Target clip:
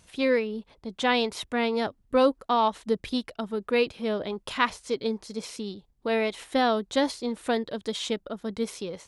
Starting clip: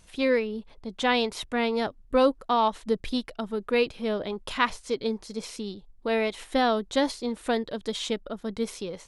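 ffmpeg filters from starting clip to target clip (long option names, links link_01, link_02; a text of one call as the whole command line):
ffmpeg -i in.wav -af "highpass=53" out.wav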